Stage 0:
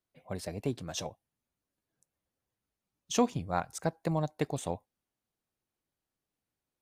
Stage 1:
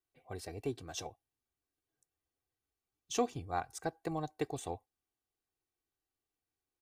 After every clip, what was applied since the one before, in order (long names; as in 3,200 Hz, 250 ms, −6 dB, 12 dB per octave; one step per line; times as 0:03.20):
comb filter 2.6 ms, depth 66%
level −6 dB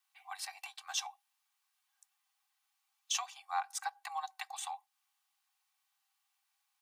downward compressor 2 to 1, threshold −48 dBFS, peak gain reduction 12 dB
Chebyshev high-pass with heavy ripple 770 Hz, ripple 3 dB
level +13.5 dB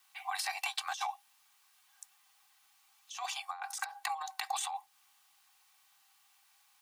compressor whose output falls as the input rises −46 dBFS, ratio −1
level +8 dB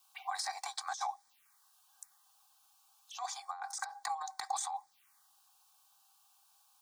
phaser swept by the level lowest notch 300 Hz, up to 2,800 Hz, full sweep at −41.5 dBFS
level +1 dB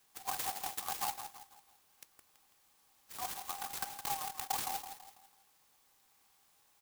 on a send: repeating echo 165 ms, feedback 40%, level −9.5 dB
on the sum: converter with an unsteady clock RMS 0.14 ms